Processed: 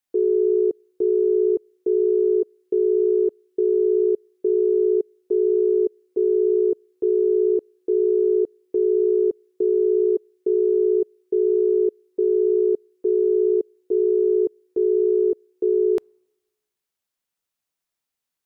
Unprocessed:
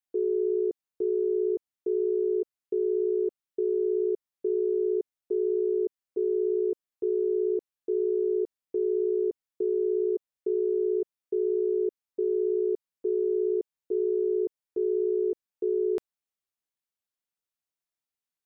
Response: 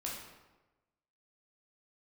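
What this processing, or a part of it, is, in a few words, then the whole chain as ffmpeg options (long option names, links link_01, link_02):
keyed gated reverb: -filter_complex "[0:a]asplit=3[link_01][link_02][link_03];[1:a]atrim=start_sample=2205[link_04];[link_02][link_04]afir=irnorm=-1:irlink=0[link_05];[link_03]apad=whole_len=813754[link_06];[link_05][link_06]sidechaingate=range=-34dB:threshold=-22dB:ratio=16:detection=peak,volume=-1.5dB[link_07];[link_01][link_07]amix=inputs=2:normalize=0,volume=7dB"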